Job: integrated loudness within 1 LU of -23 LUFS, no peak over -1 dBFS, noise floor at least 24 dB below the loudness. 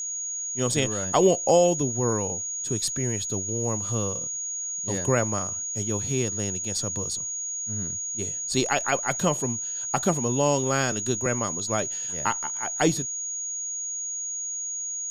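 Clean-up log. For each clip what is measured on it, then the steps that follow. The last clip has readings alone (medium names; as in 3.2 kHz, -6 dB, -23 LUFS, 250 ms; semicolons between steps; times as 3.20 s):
tick rate 56 per s; steady tone 6.7 kHz; tone level -29 dBFS; loudness -25.5 LUFS; peak level -7.5 dBFS; loudness target -23.0 LUFS
-> de-click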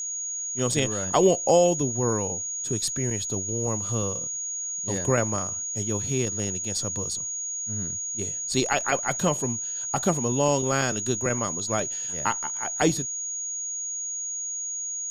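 tick rate 0.26 per s; steady tone 6.7 kHz; tone level -29 dBFS
-> band-stop 6.7 kHz, Q 30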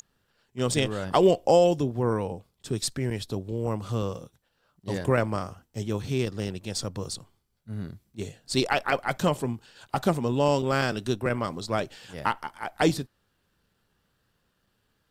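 steady tone not found; loudness -27.5 LUFS; peak level -8.5 dBFS; loudness target -23.0 LUFS
-> trim +4.5 dB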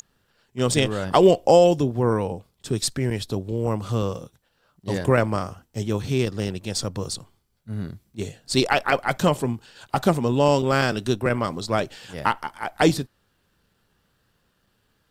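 loudness -23.0 LUFS; peak level -4.0 dBFS; noise floor -69 dBFS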